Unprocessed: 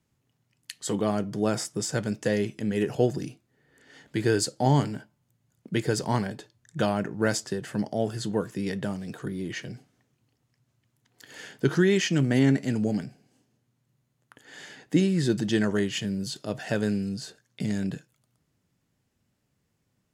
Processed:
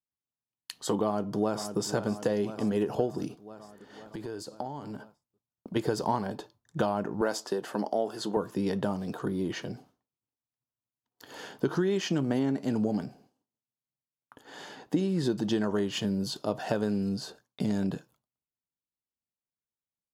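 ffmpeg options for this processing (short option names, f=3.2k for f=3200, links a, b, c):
-filter_complex "[0:a]asplit=2[a][b];[b]afade=t=in:st=1.04:d=0.01,afade=t=out:st=1.81:d=0.01,aecho=0:1:510|1020|1530|2040|2550|3060|3570:0.199526|0.129692|0.0842998|0.0547949|0.0356167|0.0231508|0.015048[c];[a][c]amix=inputs=2:normalize=0,asplit=3[d][e][f];[d]afade=t=out:st=3.27:d=0.02[g];[e]acompressor=threshold=-36dB:ratio=16:attack=3.2:release=140:knee=1:detection=peak,afade=t=in:st=3.27:d=0.02,afade=t=out:st=5.75:d=0.02[h];[f]afade=t=in:st=5.75:d=0.02[i];[g][h][i]amix=inputs=3:normalize=0,asettb=1/sr,asplit=3[j][k][l];[j]atrim=end=7.214[m];[k]atrim=start=7.21:end=8.37,asetpts=PTS-STARTPTS,afade=t=in:d=0.004:c=qsin,afade=t=out:st=1.156:d=0.004:c=qsin,highpass=280[n];[l]atrim=start=8.366[o];[m][n]acrossfade=d=0.004:c1=hsin:c2=qsin[p];[p][o]acrossfade=d=0.004:c1=qsin:c2=hsin,agate=range=-33dB:threshold=-53dB:ratio=3:detection=peak,equalizer=f=125:t=o:w=1:g=-7,equalizer=f=1k:t=o:w=1:g=8,equalizer=f=2k:t=o:w=1:g=-11,equalizer=f=8k:t=o:w=1:g=-9,acompressor=threshold=-28dB:ratio=6,volume=4dB"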